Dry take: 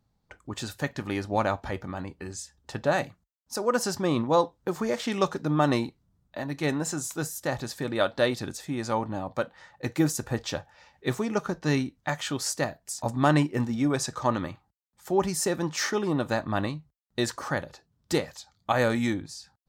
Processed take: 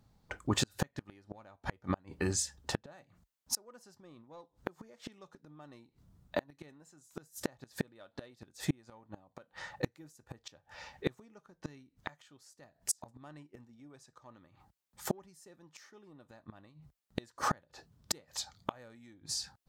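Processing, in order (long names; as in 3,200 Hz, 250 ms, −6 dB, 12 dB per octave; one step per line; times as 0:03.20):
in parallel at −8 dB: soft clipping −22 dBFS, distortion −11 dB
on the sum: gate with flip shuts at −21 dBFS, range −35 dB
level +3 dB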